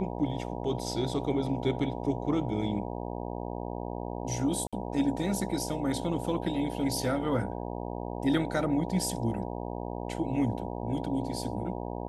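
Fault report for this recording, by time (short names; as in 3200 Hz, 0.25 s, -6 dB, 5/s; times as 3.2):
buzz 60 Hz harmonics 16 -36 dBFS
4.67–4.73 gap 56 ms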